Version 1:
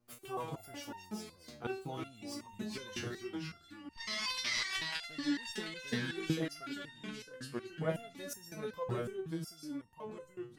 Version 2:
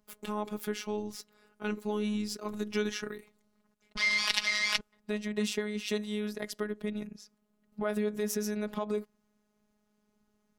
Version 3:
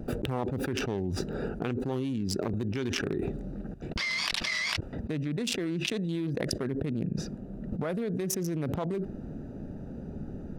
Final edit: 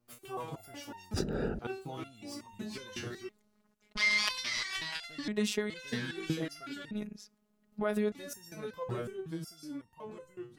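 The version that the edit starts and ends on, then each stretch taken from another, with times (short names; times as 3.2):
1
1.14–1.59 from 3
3.29–4.29 from 2
5.28–5.7 from 2
6.91–8.12 from 2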